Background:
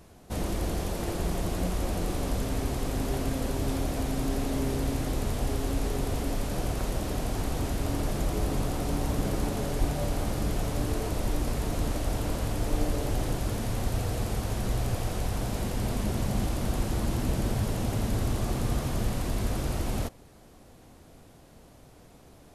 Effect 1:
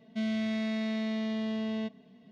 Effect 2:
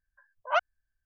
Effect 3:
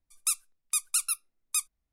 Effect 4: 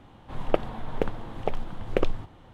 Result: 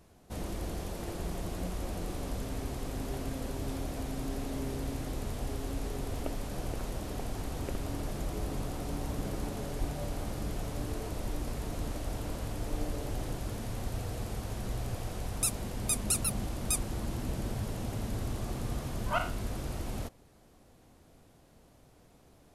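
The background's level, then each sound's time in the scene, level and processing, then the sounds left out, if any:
background -7 dB
5.72 s: add 4 -17.5 dB + buffer glitch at 0.40/1.32 s
15.16 s: add 3 -3 dB
18.59 s: add 2 -8 dB + spectral sustain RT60 0.41 s
not used: 1

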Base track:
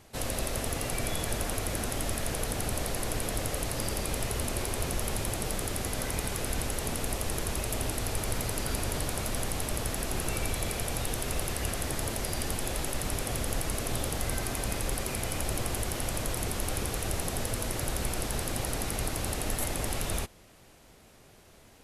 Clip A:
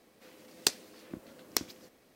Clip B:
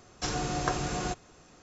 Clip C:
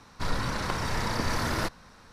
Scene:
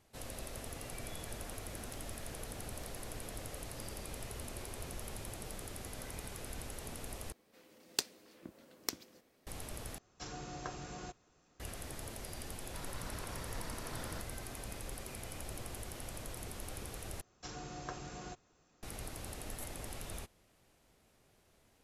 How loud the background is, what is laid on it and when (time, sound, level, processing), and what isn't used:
base track -13 dB
1.27 s: add A -13.5 dB + compression, threshold -43 dBFS
7.32 s: replace with A -7 dB
9.98 s: replace with B -14 dB
12.54 s: add C -12 dB + compression 3:1, threshold -32 dBFS
17.21 s: replace with B -14.5 dB

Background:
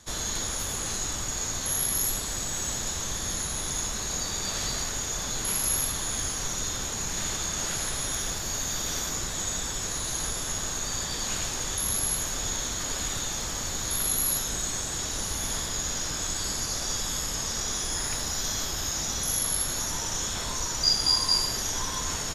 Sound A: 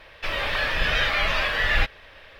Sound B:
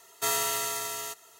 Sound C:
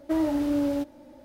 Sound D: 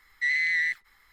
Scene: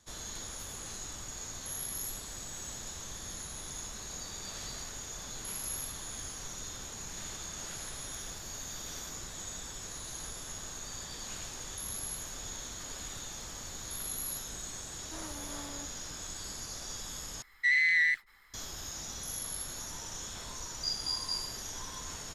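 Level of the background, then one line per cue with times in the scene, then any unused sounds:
background -11.5 dB
15.02 s: add C -17 dB + transformer saturation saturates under 1.2 kHz
17.42 s: replace with D -0.5 dB
not used: A, B

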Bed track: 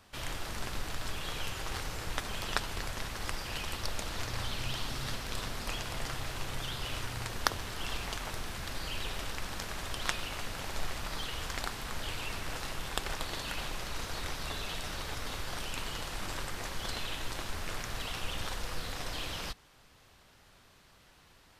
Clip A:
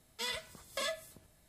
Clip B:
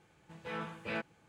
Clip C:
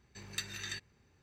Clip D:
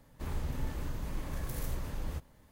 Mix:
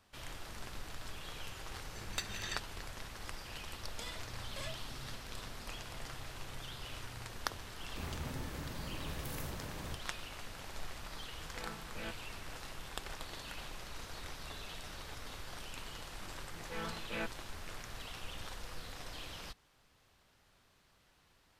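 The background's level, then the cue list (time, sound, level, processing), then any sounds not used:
bed track -8.5 dB
1.80 s: add C -1.5 dB
3.79 s: add A -10 dB
7.76 s: add D -2.5 dB + high-pass 82 Hz
11.10 s: add B -8 dB
16.25 s: add B -2.5 dB

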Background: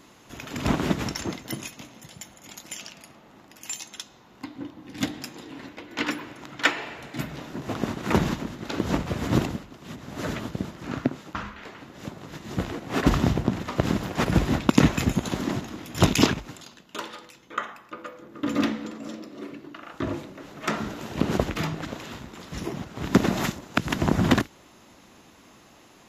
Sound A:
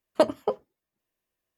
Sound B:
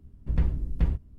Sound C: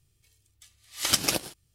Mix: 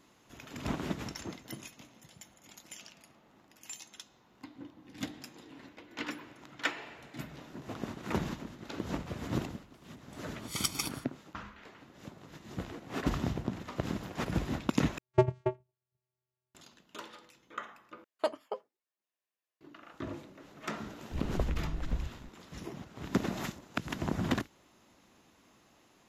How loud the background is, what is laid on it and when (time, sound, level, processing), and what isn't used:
background -11 dB
9.51 s: add C -12 dB + comb 0.9 ms, depth 98%
14.98 s: replace with A -3 dB + vocoder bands 4, square 126 Hz
18.04 s: replace with A -8.5 dB + frequency weighting A
21.11 s: add B -9 dB + three bands compressed up and down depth 100%

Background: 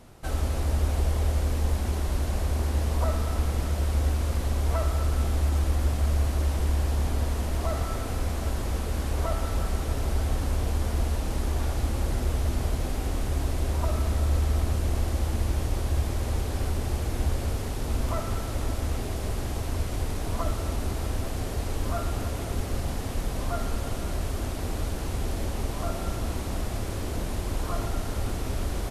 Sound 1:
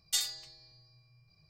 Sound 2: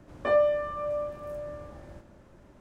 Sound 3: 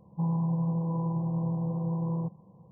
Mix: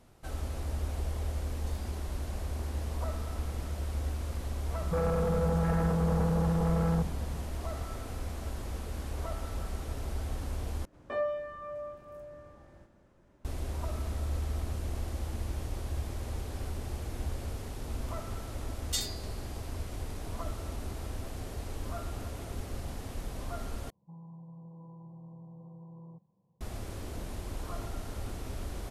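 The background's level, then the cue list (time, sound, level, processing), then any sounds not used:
background -9 dB
1.54 s: add 1 -18 dB + compression, threshold -37 dBFS
4.74 s: add 3 -5.5 dB + sine folder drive 10 dB, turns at -20.5 dBFS
10.85 s: replace with 2 -9 dB + thinning echo 82 ms, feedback 72%, level -17 dB
18.80 s: add 1 -2.5 dB
23.90 s: replace with 3 -18 dB + peak limiter -25 dBFS

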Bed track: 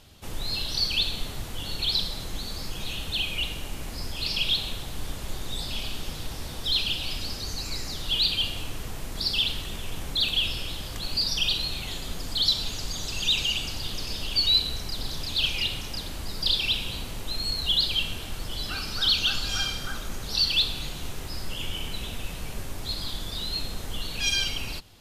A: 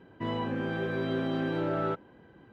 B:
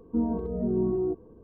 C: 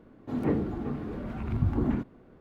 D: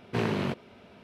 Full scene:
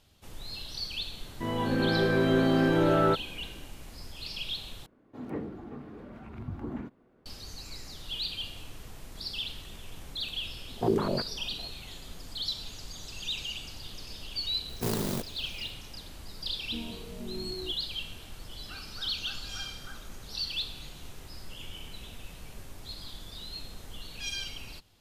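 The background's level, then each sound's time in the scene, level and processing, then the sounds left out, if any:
bed track -10.5 dB
1.20 s: add A -1 dB + level rider gain up to 7.5 dB
4.86 s: replace with C -7 dB + bass shelf 190 Hz -7 dB
10.68 s: add D -3 dB + step-sequenced low-pass 10 Hz 300–1500 Hz
14.68 s: add D -2.5 dB + sampling jitter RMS 0.15 ms
16.58 s: add B -13.5 dB

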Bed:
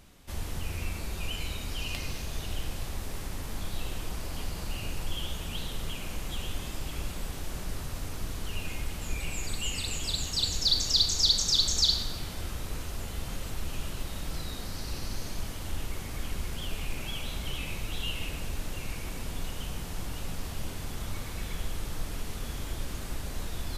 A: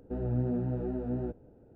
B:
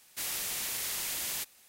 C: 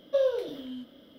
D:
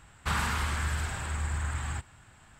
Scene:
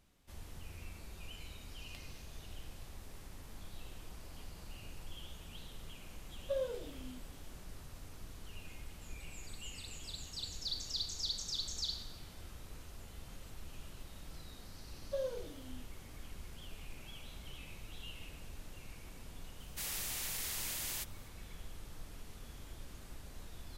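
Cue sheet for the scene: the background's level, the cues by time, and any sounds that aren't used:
bed -14.5 dB
6.36 s: add C -11.5 dB
14.99 s: add C -13 dB
19.60 s: add B -5.5 dB
not used: A, D

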